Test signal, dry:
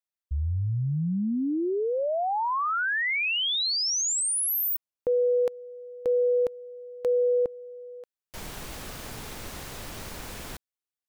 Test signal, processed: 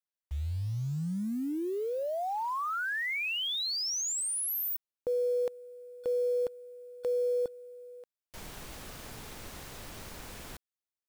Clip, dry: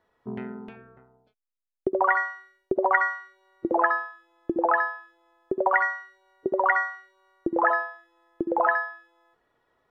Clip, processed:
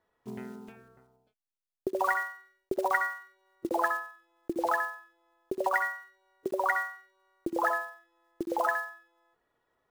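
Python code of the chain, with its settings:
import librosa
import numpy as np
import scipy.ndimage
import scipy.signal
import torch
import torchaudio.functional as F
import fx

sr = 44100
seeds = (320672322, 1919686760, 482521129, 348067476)

y = fx.block_float(x, sr, bits=5)
y = y * librosa.db_to_amplitude(-6.0)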